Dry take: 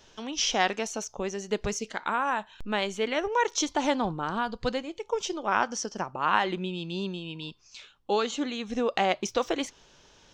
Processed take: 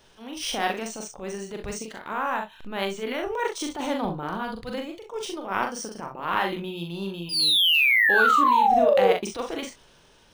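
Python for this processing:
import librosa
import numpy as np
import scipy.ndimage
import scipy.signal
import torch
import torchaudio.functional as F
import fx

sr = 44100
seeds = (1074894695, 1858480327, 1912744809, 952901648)

p1 = fx.spec_paint(x, sr, seeds[0], shape='fall', start_s=7.29, length_s=1.83, low_hz=440.0, high_hz=5000.0, level_db=-20.0)
p2 = fx.transient(p1, sr, attack_db=-12, sustain_db=1)
p3 = p2 + fx.room_early_taps(p2, sr, ms=(41, 64), db=(-4.0, -11.0), dry=0)
y = np.interp(np.arange(len(p3)), np.arange(len(p3))[::3], p3[::3])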